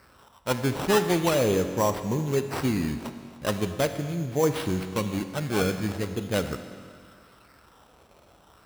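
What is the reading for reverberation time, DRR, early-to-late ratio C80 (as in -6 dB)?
2.0 s, 8.5 dB, 10.0 dB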